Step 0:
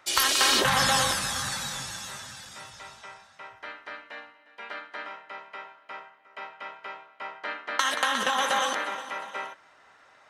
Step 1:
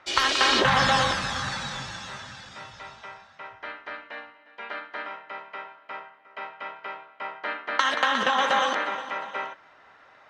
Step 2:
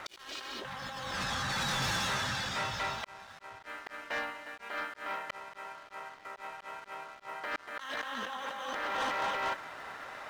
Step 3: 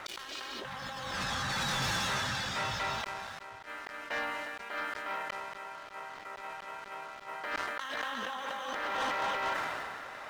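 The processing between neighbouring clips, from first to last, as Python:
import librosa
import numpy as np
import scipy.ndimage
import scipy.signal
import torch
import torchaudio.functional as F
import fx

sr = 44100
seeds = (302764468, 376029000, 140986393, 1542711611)

y1 = fx.air_absorb(x, sr, metres=150.0)
y1 = y1 * librosa.db_to_amplitude(4.0)
y2 = fx.over_compress(y1, sr, threshold_db=-36.0, ratio=-1.0)
y2 = fx.auto_swell(y2, sr, attack_ms=443.0)
y2 = fx.leveller(y2, sr, passes=3)
y2 = y2 * librosa.db_to_amplitude(-8.0)
y3 = fx.sustainer(y2, sr, db_per_s=23.0)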